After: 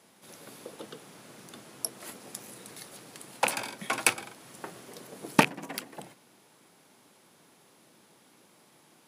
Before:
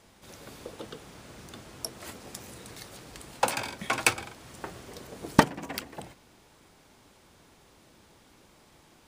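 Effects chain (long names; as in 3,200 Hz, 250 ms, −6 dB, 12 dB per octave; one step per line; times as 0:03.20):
loose part that buzzes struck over −33 dBFS, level −8 dBFS
high-pass filter 140 Hz 24 dB per octave
parametric band 11,000 Hz +10 dB 0.32 octaves
level −2 dB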